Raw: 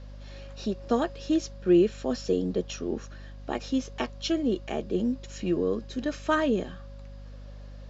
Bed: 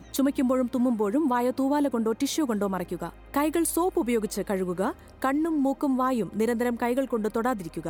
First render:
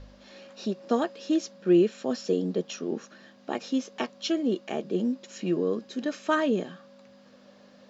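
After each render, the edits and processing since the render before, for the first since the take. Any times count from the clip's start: de-hum 50 Hz, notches 3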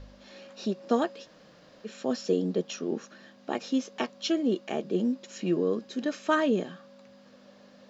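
1.24–1.87 room tone, crossfade 0.06 s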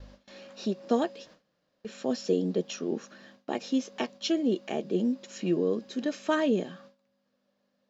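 gate with hold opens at -41 dBFS; dynamic EQ 1300 Hz, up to -6 dB, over -47 dBFS, Q 2.1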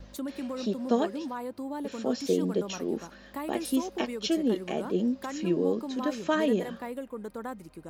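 add bed -11.5 dB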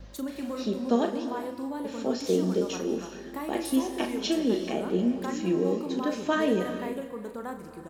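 doubler 38 ms -8 dB; non-linear reverb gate 0.46 s flat, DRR 8 dB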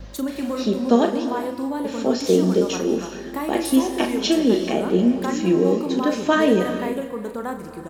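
gain +8 dB

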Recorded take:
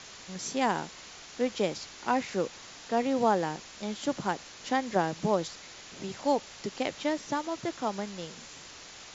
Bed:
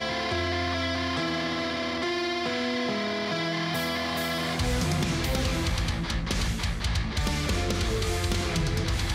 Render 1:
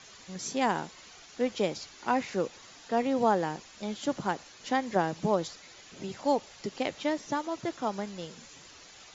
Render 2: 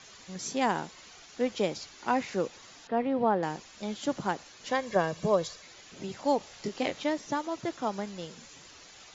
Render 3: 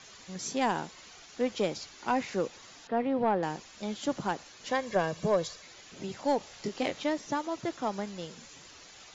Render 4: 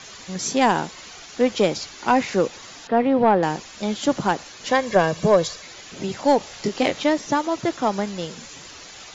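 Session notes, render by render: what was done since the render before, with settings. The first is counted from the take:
denoiser 8 dB, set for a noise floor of -48 dBFS
2.87–3.43 air absorption 340 m; 4.69–5.63 comb 1.8 ms, depth 52%; 6.38–7.04 doubler 24 ms -4.5 dB
soft clip -16 dBFS, distortion -20 dB
gain +10.5 dB

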